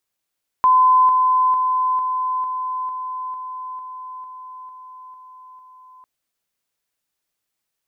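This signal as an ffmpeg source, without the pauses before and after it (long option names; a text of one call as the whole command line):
ffmpeg -f lavfi -i "aevalsrc='pow(10,(-10-3*floor(t/0.45))/20)*sin(2*PI*1020*t)':duration=5.4:sample_rate=44100" out.wav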